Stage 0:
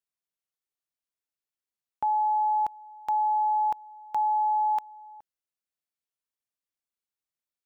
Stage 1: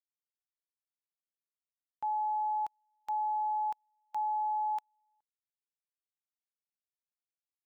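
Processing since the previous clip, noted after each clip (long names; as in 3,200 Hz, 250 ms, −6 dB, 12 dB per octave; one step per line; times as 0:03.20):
tilt shelving filter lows −4.5 dB, about 1,300 Hz
expander for the loud parts 2.5 to 1, over −41 dBFS
level −5.5 dB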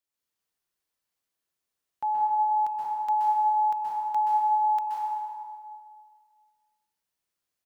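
echo with shifted repeats 184 ms, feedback 40%, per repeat +39 Hz, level −22 dB
dense smooth reverb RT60 1.8 s, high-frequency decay 0.75×, pre-delay 115 ms, DRR −4.5 dB
level +5.5 dB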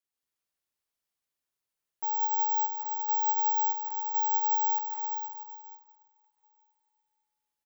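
repeating echo 730 ms, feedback 31%, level −23.5 dB
bad sample-rate conversion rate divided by 2×, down none, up zero stuff
level −6.5 dB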